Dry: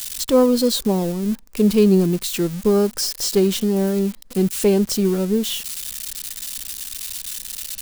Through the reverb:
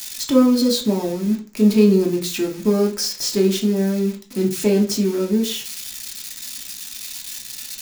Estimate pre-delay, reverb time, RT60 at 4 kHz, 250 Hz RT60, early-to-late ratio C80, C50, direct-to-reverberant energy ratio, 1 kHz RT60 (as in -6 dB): 3 ms, 0.40 s, 0.45 s, 0.50 s, 16.5 dB, 11.0 dB, -0.5 dB, 0.40 s